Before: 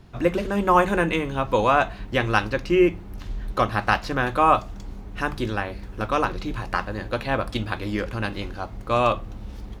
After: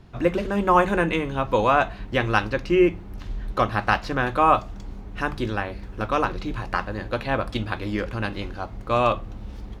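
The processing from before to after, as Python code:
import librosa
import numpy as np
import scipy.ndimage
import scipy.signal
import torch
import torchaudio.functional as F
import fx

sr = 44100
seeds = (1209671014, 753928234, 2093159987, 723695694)

y = fx.high_shelf(x, sr, hz=7300.0, db=-7.0)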